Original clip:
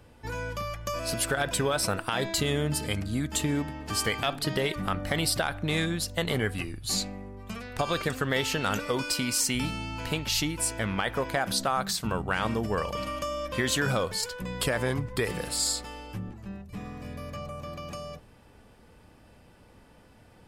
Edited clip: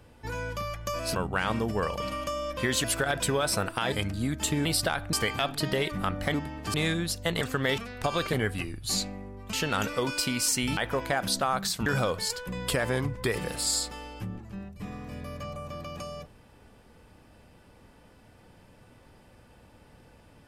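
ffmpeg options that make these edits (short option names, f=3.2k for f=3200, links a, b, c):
-filter_complex "[0:a]asplit=14[a][b][c][d][e][f][g][h][i][j][k][l][m][n];[a]atrim=end=1.152[o];[b]atrim=start=12.098:end=13.792[p];[c]atrim=start=1.148:end=2.232[q];[d]atrim=start=2.838:end=3.572[r];[e]atrim=start=5.178:end=5.662[s];[f]atrim=start=3.968:end=5.182[t];[g]atrim=start=3.568:end=3.972[u];[h]atrim=start=5.658:end=6.332[v];[i]atrim=start=8.078:end=8.452[w];[j]atrim=start=7.528:end=8.082[x];[k]atrim=start=6.328:end=7.532[y];[l]atrim=start=8.448:end=9.692[z];[m]atrim=start=11.008:end=12.102[aa];[n]atrim=start=13.788[ab];[o][p]acrossfade=d=0.004:c1=hsin:c2=hsin[ac];[ac][q]acrossfade=d=0.004:c1=hsin:c2=hsin[ad];[ad][r]acrossfade=d=0.004:c1=hsin:c2=hsin[ae];[ae][s]acrossfade=d=0.004:c1=hsin:c2=hsin[af];[af][t]acrossfade=d=0.004:c1=hsin:c2=hsin[ag];[ag][u]acrossfade=d=0.004:c1=hsin:c2=hsin[ah];[ah][v]acrossfade=d=0.004:c1=hsin:c2=hsin[ai];[ai][w]acrossfade=d=0.004:c1=hsin:c2=hsin[aj];[aj][x]acrossfade=d=0.004:c1=hsin:c2=hsin[ak];[ak][y]acrossfade=d=0.004:c1=hsin:c2=hsin[al];[al][z]acrossfade=d=0.004:c1=hsin:c2=hsin[am];[am][aa]acrossfade=d=0.004:c1=hsin:c2=hsin[an];[an][ab]acrossfade=d=0.004:c1=hsin:c2=hsin"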